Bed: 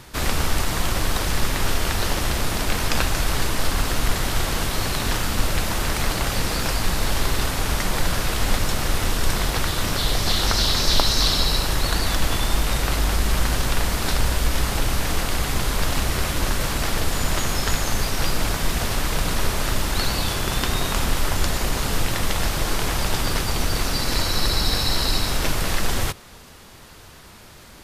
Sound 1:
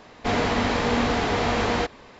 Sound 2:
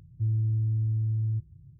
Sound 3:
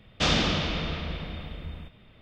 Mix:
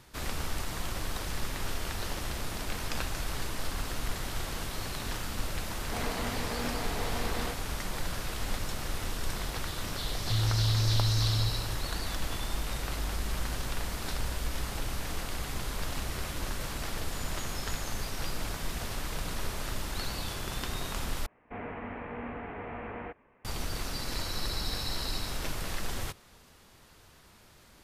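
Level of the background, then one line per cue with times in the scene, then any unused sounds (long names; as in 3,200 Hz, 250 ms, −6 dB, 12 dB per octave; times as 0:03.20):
bed −12.5 dB
0:05.67: mix in 1 −13.5 dB
0:10.10: mix in 2 −2.5 dB + feedback echo at a low word length 272 ms, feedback 55%, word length 10 bits, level −14 dB
0:21.26: overwrite with 1 −16.5 dB + Butterworth low-pass 2,600 Hz 48 dB per octave
not used: 3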